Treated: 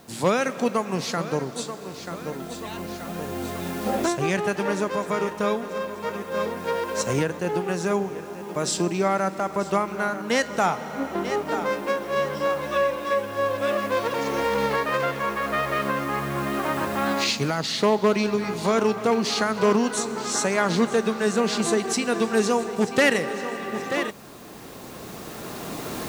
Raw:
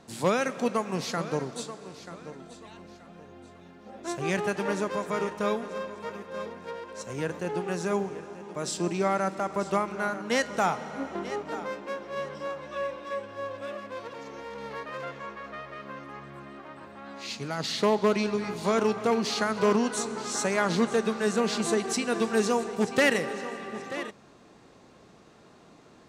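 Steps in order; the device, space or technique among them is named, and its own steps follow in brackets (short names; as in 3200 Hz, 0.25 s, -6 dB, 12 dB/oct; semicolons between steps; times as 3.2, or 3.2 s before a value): cheap recorder with automatic gain (white noise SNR 32 dB; recorder AGC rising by 7.1 dB/s); gain +3.5 dB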